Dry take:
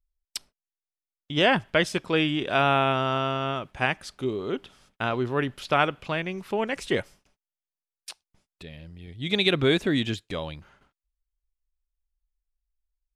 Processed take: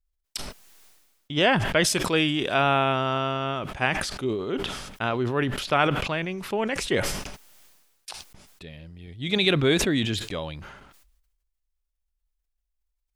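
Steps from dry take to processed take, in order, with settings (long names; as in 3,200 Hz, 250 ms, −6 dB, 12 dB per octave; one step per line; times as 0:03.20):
0:01.84–0:02.54: high-shelf EQ 5,700 Hz +11 dB
level that may fall only so fast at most 45 dB per second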